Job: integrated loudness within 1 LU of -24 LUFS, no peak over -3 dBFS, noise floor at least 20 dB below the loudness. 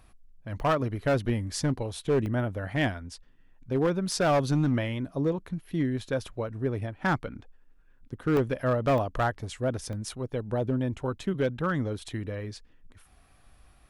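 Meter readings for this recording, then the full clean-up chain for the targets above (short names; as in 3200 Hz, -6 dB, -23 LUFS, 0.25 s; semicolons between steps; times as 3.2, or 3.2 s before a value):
clipped 1.2%; flat tops at -19.0 dBFS; dropouts 5; longest dropout 1.1 ms; loudness -29.0 LUFS; peak -19.0 dBFS; loudness target -24.0 LUFS
-> clip repair -19 dBFS; interpolate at 0.6/2.26/8.37/8.98/9.93, 1.1 ms; gain +5 dB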